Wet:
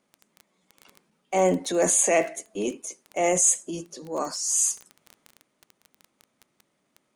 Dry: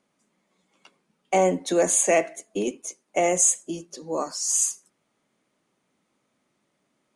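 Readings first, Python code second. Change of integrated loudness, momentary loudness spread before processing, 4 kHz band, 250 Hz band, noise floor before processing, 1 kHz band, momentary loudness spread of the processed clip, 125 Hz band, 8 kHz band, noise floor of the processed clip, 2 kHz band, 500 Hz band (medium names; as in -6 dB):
-0.5 dB, 15 LU, -0.5 dB, -0.5 dB, -74 dBFS, -1.5 dB, 15 LU, +0.5 dB, 0.0 dB, -74 dBFS, -1.0 dB, -1.5 dB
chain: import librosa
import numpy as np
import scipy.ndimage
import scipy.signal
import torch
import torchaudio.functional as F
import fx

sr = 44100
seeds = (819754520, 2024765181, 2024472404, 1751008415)

y = fx.transient(x, sr, attack_db=-6, sustain_db=4)
y = fx.dmg_crackle(y, sr, seeds[0], per_s=11.0, level_db=-31.0)
y = fx.high_shelf(y, sr, hz=11000.0, db=3.0)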